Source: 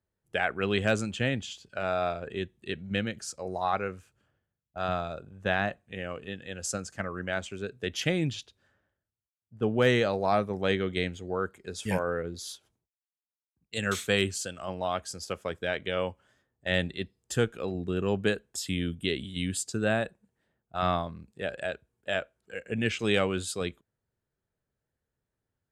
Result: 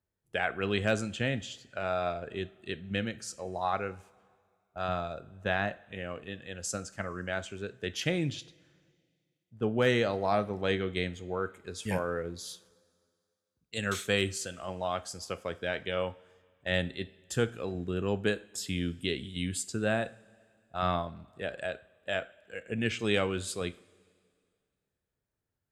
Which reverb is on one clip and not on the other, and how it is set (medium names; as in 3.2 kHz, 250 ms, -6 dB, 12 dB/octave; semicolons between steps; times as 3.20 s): two-slope reverb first 0.39 s, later 2.2 s, from -18 dB, DRR 13 dB; trim -2.5 dB